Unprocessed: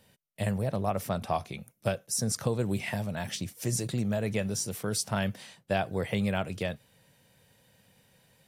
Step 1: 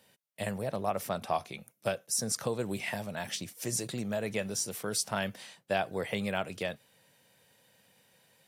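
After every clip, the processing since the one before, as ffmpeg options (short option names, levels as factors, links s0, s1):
-af "highpass=f=330:p=1"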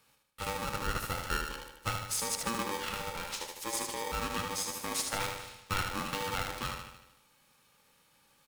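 -filter_complex "[0:a]asplit=2[s0][s1];[s1]aecho=0:1:76|152|228|304|380|456|532:0.562|0.315|0.176|0.0988|0.0553|0.031|0.0173[s2];[s0][s2]amix=inputs=2:normalize=0,aeval=exprs='val(0)*sgn(sin(2*PI*690*n/s))':c=same,volume=0.708"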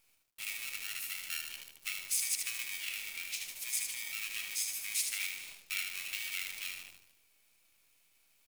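-af "highpass=f=2300:t=q:w=5.5,aderivative,acrusher=bits=9:dc=4:mix=0:aa=0.000001"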